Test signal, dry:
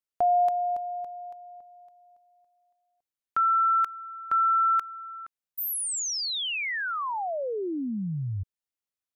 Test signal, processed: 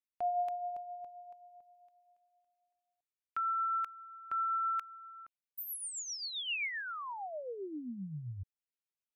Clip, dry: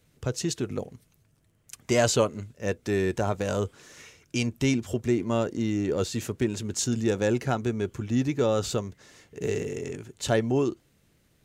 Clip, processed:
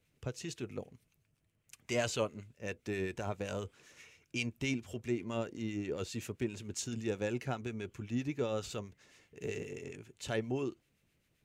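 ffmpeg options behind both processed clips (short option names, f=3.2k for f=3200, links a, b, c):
-filter_complex "[0:a]equalizer=f=2.5k:w=2.2:g=7,acrossover=split=1200[a][b];[a]aeval=exprs='val(0)*(1-0.5/2+0.5/2*cos(2*PI*7.6*n/s))':c=same[c];[b]aeval=exprs='val(0)*(1-0.5/2-0.5/2*cos(2*PI*7.6*n/s))':c=same[d];[c][d]amix=inputs=2:normalize=0,volume=-9dB"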